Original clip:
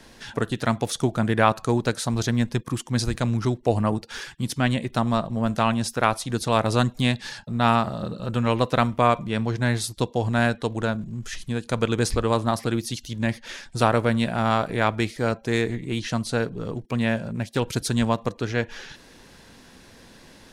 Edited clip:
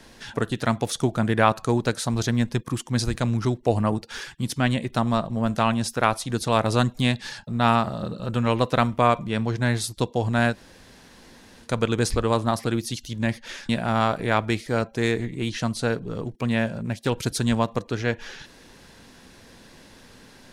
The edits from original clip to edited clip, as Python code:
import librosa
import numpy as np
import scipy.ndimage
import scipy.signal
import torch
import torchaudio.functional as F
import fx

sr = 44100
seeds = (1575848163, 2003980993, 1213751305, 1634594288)

y = fx.edit(x, sr, fx.room_tone_fill(start_s=10.54, length_s=1.11, crossfade_s=0.1),
    fx.cut(start_s=13.69, length_s=0.5), tone=tone)